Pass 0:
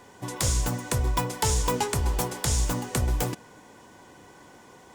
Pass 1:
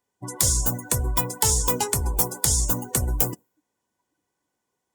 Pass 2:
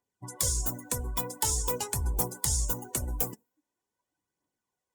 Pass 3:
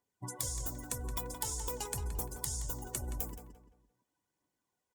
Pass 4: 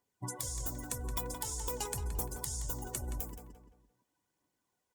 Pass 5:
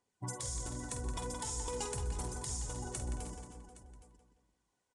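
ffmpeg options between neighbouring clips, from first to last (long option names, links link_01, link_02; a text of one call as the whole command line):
ffmpeg -i in.wav -af "aemphasis=mode=production:type=50kf,afftdn=noise_reduction=31:noise_floor=-33" out.wav
ffmpeg -i in.wav -af "aphaser=in_gain=1:out_gain=1:delay=4.7:decay=0.43:speed=0.45:type=triangular,volume=-8.5dB" out.wav
ffmpeg -i in.wav -filter_complex "[0:a]acompressor=threshold=-35dB:ratio=6,asplit=2[link_01][link_02];[link_02]adelay=172,lowpass=frequency=3300:poles=1,volume=-7.5dB,asplit=2[link_03][link_04];[link_04]adelay=172,lowpass=frequency=3300:poles=1,volume=0.36,asplit=2[link_05][link_06];[link_06]adelay=172,lowpass=frequency=3300:poles=1,volume=0.36,asplit=2[link_07][link_08];[link_08]adelay=172,lowpass=frequency=3300:poles=1,volume=0.36[link_09];[link_03][link_05][link_07][link_09]amix=inputs=4:normalize=0[link_10];[link_01][link_10]amix=inputs=2:normalize=0" out.wav
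ffmpeg -i in.wav -af "alimiter=limit=-21.5dB:level=0:latency=1:release=449,volume=2.5dB" out.wav
ffmpeg -i in.wav -filter_complex "[0:a]asoftclip=type=tanh:threshold=-29.5dB,asplit=2[link_01][link_02];[link_02]aecho=0:1:49|126|316|484|816:0.398|0.133|0.237|0.119|0.141[link_03];[link_01][link_03]amix=inputs=2:normalize=0,aresample=22050,aresample=44100" out.wav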